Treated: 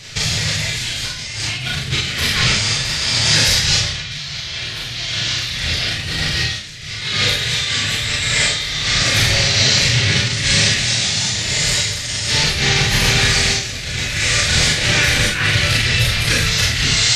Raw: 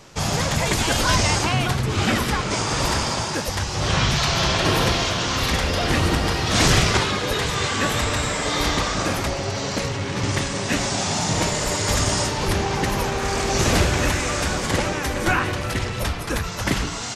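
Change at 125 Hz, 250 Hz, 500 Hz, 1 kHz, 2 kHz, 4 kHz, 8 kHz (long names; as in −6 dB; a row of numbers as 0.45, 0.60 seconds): +2.5, −3.0, −4.5, −5.5, +7.0, +9.5, +6.5 decibels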